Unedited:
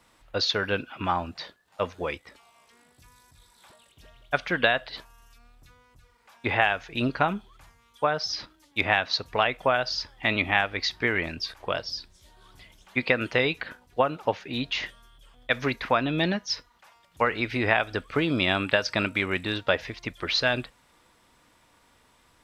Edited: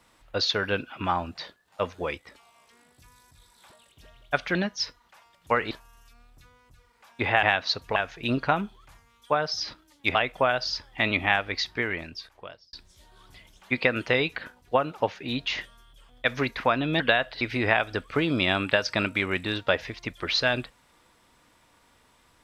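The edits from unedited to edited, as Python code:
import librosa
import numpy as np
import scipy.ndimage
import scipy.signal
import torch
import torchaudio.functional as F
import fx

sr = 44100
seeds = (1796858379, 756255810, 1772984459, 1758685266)

y = fx.edit(x, sr, fx.swap(start_s=4.55, length_s=0.41, other_s=16.25, other_length_s=1.16),
    fx.move(start_s=8.87, length_s=0.53, to_s=6.68),
    fx.fade_out_span(start_s=10.72, length_s=1.26), tone=tone)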